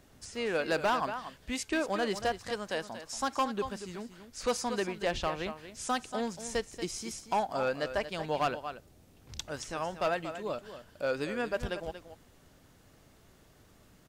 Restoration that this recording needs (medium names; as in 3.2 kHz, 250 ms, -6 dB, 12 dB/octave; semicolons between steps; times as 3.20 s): clip repair -23 dBFS; inverse comb 233 ms -11.5 dB